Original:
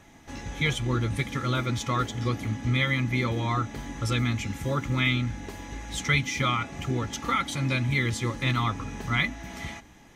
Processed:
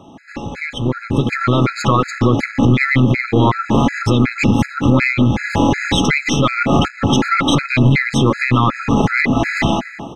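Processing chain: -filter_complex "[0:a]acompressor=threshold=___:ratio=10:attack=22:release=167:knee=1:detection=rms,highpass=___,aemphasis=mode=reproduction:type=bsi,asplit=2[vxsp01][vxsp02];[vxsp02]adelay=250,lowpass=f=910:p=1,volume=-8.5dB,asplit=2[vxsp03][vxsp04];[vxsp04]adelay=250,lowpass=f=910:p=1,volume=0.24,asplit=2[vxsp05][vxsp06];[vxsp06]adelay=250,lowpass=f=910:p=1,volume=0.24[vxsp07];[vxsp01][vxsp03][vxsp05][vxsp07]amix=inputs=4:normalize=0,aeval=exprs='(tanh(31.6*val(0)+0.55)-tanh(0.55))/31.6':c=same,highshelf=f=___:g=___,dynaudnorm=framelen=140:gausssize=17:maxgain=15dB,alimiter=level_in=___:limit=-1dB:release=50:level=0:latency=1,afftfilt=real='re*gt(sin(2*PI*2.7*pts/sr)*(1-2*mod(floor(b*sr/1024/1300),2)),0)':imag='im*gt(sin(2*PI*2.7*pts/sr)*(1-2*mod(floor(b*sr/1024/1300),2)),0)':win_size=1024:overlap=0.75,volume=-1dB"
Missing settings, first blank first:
-34dB, 240, 7000, -9, 17.5dB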